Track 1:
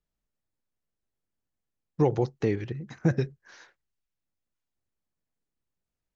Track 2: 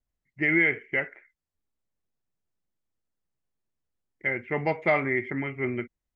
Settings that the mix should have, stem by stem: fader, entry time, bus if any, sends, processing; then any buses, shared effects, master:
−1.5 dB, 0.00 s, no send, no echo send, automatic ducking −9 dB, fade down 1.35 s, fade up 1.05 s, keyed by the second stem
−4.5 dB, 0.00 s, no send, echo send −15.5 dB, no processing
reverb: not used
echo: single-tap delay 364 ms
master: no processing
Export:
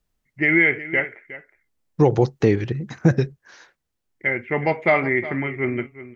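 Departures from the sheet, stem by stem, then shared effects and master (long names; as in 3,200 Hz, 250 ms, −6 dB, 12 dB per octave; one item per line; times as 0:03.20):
stem 1 −1.5 dB → +9.0 dB
stem 2 −4.5 dB → +5.5 dB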